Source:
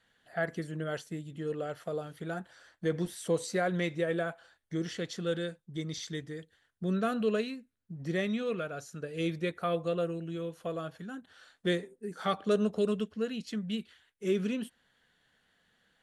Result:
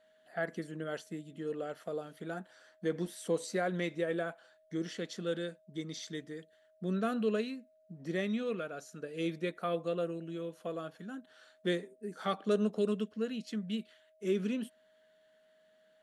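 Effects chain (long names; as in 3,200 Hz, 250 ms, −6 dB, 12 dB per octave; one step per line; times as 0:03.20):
low shelf with overshoot 150 Hz −10.5 dB, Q 1.5
steady tone 630 Hz −61 dBFS
level −3.5 dB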